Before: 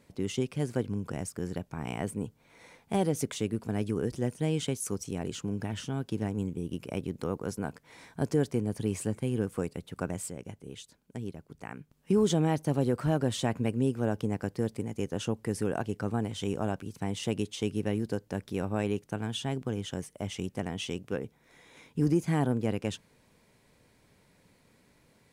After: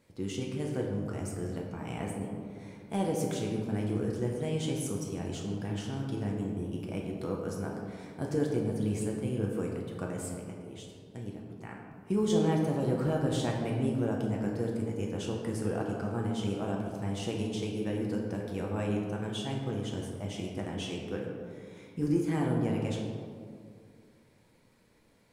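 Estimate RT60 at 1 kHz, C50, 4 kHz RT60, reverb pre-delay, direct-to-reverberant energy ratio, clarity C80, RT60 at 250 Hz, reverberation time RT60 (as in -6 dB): 2.0 s, 2.5 dB, 1.1 s, 6 ms, -1.5 dB, 4.0 dB, 2.5 s, 2.2 s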